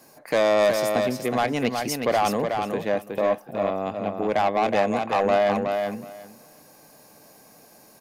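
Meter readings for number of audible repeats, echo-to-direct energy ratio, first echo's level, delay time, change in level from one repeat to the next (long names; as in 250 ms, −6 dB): 2, −5.0 dB, −5.0 dB, 369 ms, −16.0 dB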